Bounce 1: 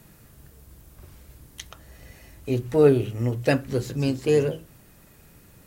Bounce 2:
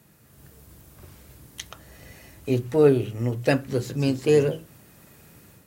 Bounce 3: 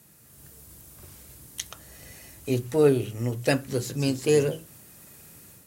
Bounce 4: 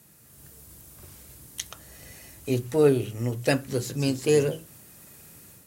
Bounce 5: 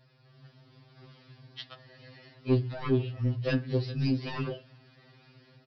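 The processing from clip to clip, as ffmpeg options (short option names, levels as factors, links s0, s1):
-af "dynaudnorm=f=230:g=3:m=2.37,highpass=81,volume=0.562"
-af "equalizer=f=10000:w=0.45:g=10,volume=0.75"
-af anull
-af "aresample=11025,asoftclip=type=tanh:threshold=0.0944,aresample=44100,afftfilt=real='re*2.45*eq(mod(b,6),0)':imag='im*2.45*eq(mod(b,6),0)':win_size=2048:overlap=0.75"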